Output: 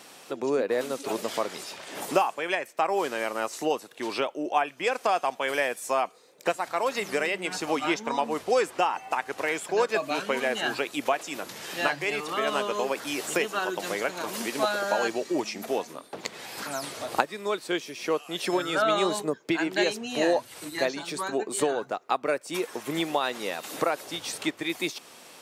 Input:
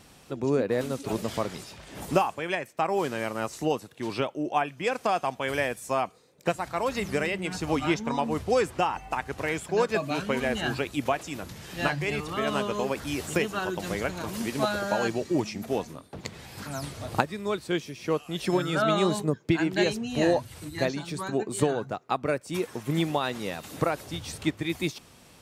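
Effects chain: high-pass 370 Hz 12 dB/octave; in parallel at +1.5 dB: compression, threshold -39 dBFS, peak gain reduction 19.5 dB

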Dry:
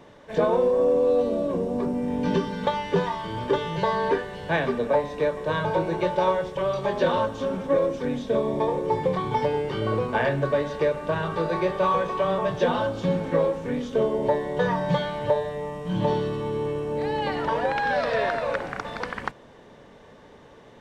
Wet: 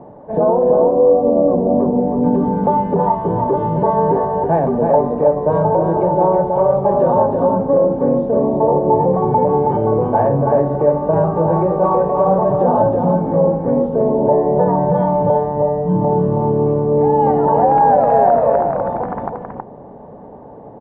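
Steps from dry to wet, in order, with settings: peaking EQ 180 Hz +9 dB 2.6 oct; peak limiter -14 dBFS, peak gain reduction 8.5 dB; resonant low-pass 790 Hz, resonance Q 3.7; on a send: delay 322 ms -4.5 dB; on the sum: trim +3 dB

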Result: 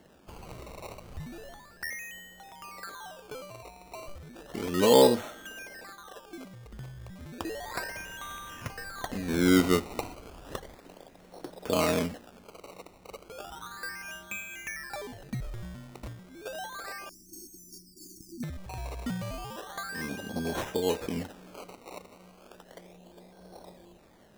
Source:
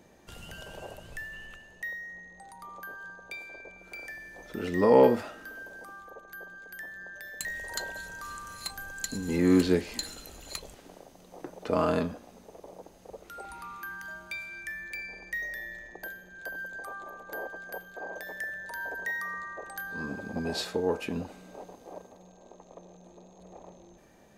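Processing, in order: decimation with a swept rate 18×, swing 100% 0.33 Hz; 17.09–18.43 s: brick-wall FIR band-stop 380–4400 Hz

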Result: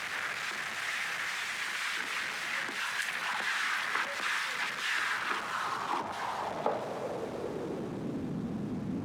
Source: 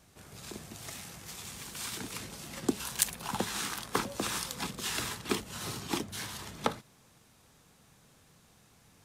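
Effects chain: jump at every zero crossing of -19 dBFS; band-pass sweep 1.8 kHz -> 250 Hz, 4.93–8.38 s

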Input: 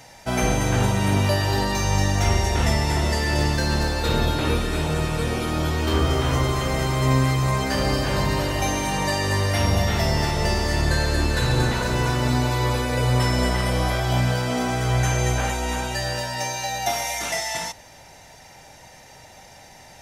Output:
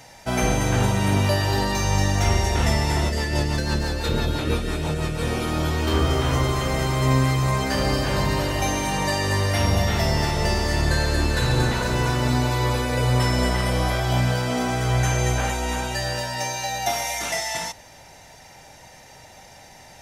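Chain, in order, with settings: 3.09–5.23 s: rotary cabinet horn 6 Hz

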